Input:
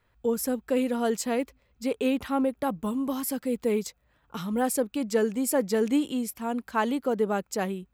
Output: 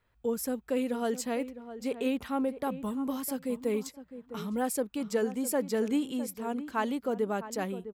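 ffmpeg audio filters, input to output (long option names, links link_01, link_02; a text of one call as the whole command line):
ffmpeg -i in.wav -filter_complex "[0:a]asplit=2[link_01][link_02];[link_02]adelay=657,lowpass=frequency=1400:poles=1,volume=-12dB,asplit=2[link_03][link_04];[link_04]adelay=657,lowpass=frequency=1400:poles=1,volume=0.16[link_05];[link_01][link_03][link_05]amix=inputs=3:normalize=0,volume=-4.5dB" out.wav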